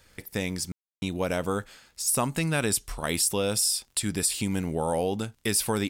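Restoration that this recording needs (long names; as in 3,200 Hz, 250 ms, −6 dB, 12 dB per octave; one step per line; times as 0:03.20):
click removal
ambience match 0:00.72–0:01.02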